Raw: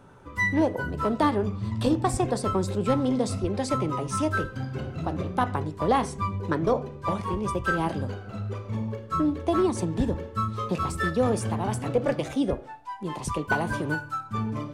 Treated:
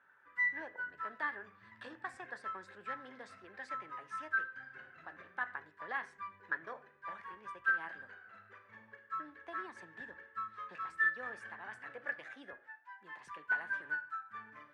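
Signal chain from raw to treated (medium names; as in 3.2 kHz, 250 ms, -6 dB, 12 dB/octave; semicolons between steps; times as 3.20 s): band-pass filter 1.7 kHz, Q 9.6; trim +3.5 dB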